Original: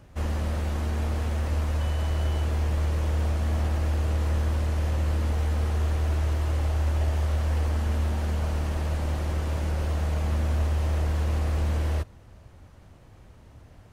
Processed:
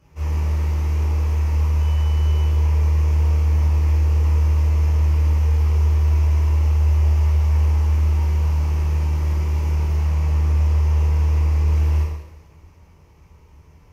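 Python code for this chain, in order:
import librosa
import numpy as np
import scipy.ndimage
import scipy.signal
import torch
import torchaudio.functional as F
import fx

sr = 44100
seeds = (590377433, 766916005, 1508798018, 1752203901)

y = fx.self_delay(x, sr, depth_ms=0.079, at=(9.95, 11.73))
y = fx.ripple_eq(y, sr, per_octave=0.8, db=9)
y = fx.rev_double_slope(y, sr, seeds[0], early_s=0.91, late_s=2.7, knee_db=-18, drr_db=-7.5)
y = F.gain(torch.from_numpy(y), -8.5).numpy()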